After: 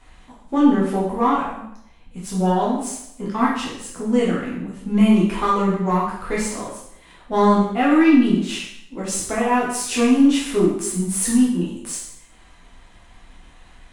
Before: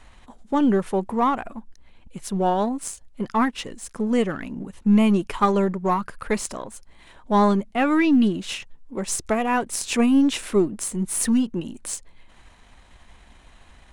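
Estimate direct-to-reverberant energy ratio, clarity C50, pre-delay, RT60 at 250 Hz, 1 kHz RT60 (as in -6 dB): -6.0 dB, 2.5 dB, 5 ms, 0.70 s, 0.75 s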